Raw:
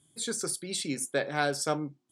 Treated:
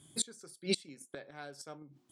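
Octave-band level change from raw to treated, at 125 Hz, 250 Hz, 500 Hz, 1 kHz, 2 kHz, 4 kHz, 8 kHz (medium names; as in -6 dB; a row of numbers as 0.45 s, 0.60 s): -9.5 dB, -8.0 dB, -10.0 dB, -18.5 dB, -14.0 dB, -4.0 dB, -7.5 dB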